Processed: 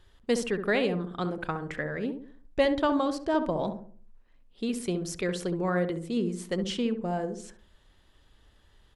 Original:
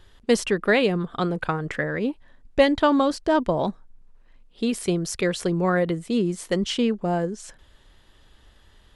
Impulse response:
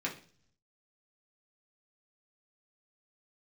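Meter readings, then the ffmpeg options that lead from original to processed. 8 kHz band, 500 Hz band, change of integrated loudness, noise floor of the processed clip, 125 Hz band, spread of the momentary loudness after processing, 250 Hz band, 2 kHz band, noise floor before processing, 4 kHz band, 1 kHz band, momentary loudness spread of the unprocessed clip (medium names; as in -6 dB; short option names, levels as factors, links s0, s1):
-7.0 dB, -6.0 dB, -6.0 dB, -62 dBFS, -6.5 dB, 9 LU, -6.0 dB, -7.0 dB, -56 dBFS, -7.0 dB, -6.5 dB, 8 LU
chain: -filter_complex "[0:a]asplit=2[s0][s1];[s1]adelay=67,lowpass=f=890:p=1,volume=0.501,asplit=2[s2][s3];[s3]adelay=67,lowpass=f=890:p=1,volume=0.46,asplit=2[s4][s5];[s5]adelay=67,lowpass=f=890:p=1,volume=0.46,asplit=2[s6][s7];[s7]adelay=67,lowpass=f=890:p=1,volume=0.46,asplit=2[s8][s9];[s9]adelay=67,lowpass=f=890:p=1,volume=0.46,asplit=2[s10][s11];[s11]adelay=67,lowpass=f=890:p=1,volume=0.46[s12];[s0][s2][s4][s6][s8][s10][s12]amix=inputs=7:normalize=0,volume=0.447"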